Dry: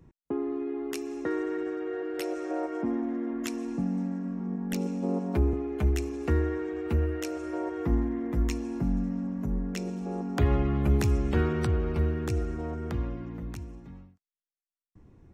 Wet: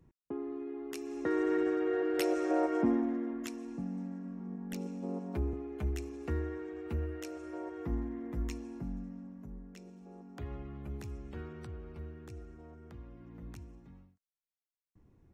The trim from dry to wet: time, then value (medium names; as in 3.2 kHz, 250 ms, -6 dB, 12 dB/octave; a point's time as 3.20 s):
0.89 s -8 dB
1.53 s +2 dB
2.84 s +2 dB
3.57 s -9 dB
8.51 s -9 dB
9.70 s -18 dB
13.05 s -18 dB
13.47 s -9 dB